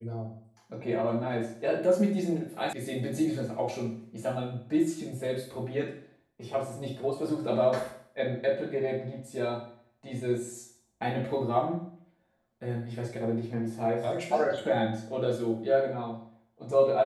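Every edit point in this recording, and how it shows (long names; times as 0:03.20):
0:02.73: cut off before it has died away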